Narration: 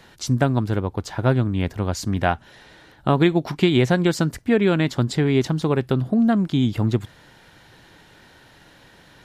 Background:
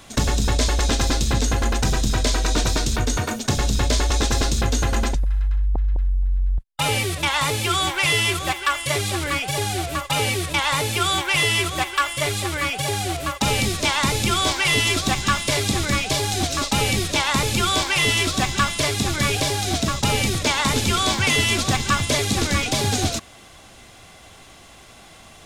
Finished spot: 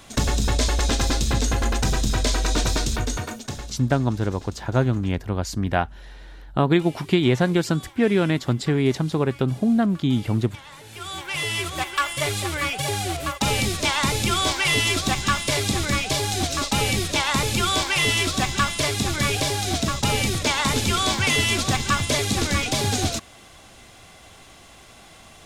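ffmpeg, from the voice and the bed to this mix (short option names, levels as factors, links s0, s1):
-filter_complex "[0:a]adelay=3500,volume=0.841[s0];[1:a]volume=9.44,afade=t=out:st=2.81:d=0.98:silence=0.0891251,afade=t=in:st=10.83:d=1.28:silence=0.0891251[s1];[s0][s1]amix=inputs=2:normalize=0"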